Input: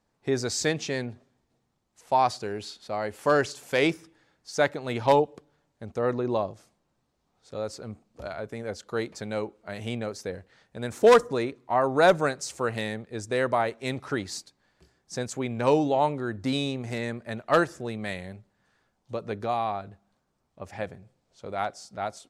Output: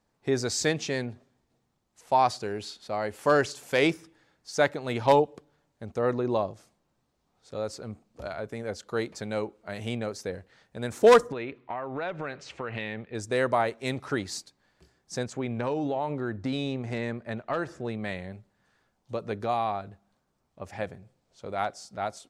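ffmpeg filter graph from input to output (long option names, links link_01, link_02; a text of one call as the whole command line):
ffmpeg -i in.wav -filter_complex "[0:a]asettb=1/sr,asplit=3[link_01][link_02][link_03];[link_01]atrim=end=11.324[link_04];[link_02]atrim=start=11.32:end=13.15,asetpts=PTS-STARTPTS,afade=type=in:duration=0.004:curve=qsin,afade=type=out:start_time=1.826:duration=0.004:curve=qsin,acompressor=threshold=-30dB:ratio=10:attack=3.2:release=140:knee=1:detection=peak,lowpass=frequency=2700:width_type=q:width=2.1[link_05];[link_03]atrim=start=13.146[link_06];[link_04][link_05]acrossfade=duration=0.004:curve1=hsin:curve2=qsin[link_07];[link_07][link_06]acrossfade=duration=0.004:curve1=qsin:curve2=hsin,asettb=1/sr,asplit=3[link_08][link_09][link_10];[link_08]atrim=end=15.234[link_11];[link_09]atrim=start=15.23:end=18.33,asetpts=PTS-STARTPTS,afade=type=in:duration=0.004:curve=qsin,afade=type=out:start_time=3.096:duration=0.004:curve=qsin,aemphasis=mode=reproduction:type=50fm,acompressor=threshold=-25dB:ratio=5:attack=3.2:release=140:knee=1:detection=peak[link_12];[link_10]atrim=start=18.326[link_13];[link_11][link_12]acrossfade=duration=0.004:curve1=hsin:curve2=qsin[link_14];[link_14][link_13]acrossfade=duration=0.004:curve1=qsin:curve2=hsin" out.wav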